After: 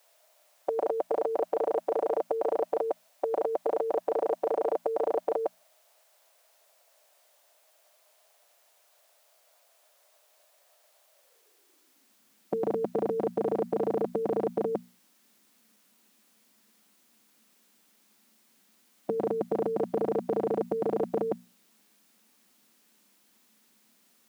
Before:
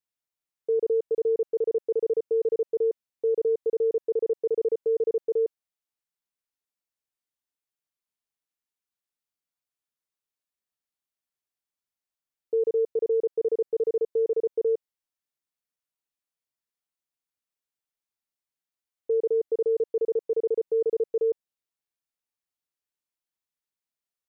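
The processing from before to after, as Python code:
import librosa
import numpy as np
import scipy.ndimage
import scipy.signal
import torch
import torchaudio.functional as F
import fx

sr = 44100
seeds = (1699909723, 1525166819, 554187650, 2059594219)

y = fx.filter_sweep_highpass(x, sr, from_hz=620.0, to_hz=220.0, start_s=11.1, end_s=12.17, q=6.9)
y = fx.hum_notches(y, sr, base_hz=60, count=4)
y = fx.spectral_comp(y, sr, ratio=4.0)
y = F.gain(torch.from_numpy(y), 2.5).numpy()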